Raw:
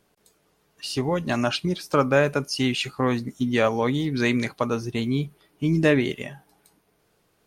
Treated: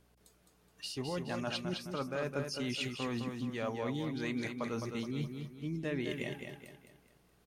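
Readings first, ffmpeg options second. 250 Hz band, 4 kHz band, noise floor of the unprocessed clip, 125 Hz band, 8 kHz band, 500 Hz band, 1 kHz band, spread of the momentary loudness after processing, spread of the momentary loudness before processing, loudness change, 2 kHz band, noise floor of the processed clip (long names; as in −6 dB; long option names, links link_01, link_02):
−13.0 dB, −11.0 dB, −67 dBFS, −13.0 dB, −11.0 dB, −14.5 dB, −15.0 dB, 6 LU, 9 LU, −14.0 dB, −14.0 dB, −68 dBFS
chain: -af "areverse,acompressor=threshold=-30dB:ratio=6,areverse,aeval=exprs='val(0)+0.000562*(sin(2*PI*60*n/s)+sin(2*PI*2*60*n/s)/2+sin(2*PI*3*60*n/s)/3+sin(2*PI*4*60*n/s)/4+sin(2*PI*5*60*n/s)/5)':channel_layout=same,aecho=1:1:211|422|633|844|1055:0.501|0.2|0.0802|0.0321|0.0128,volume=-5dB"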